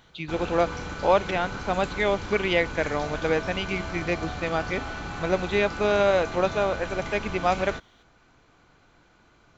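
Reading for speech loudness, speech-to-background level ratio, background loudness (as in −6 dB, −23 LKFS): −26.0 LKFS, 8.5 dB, −34.5 LKFS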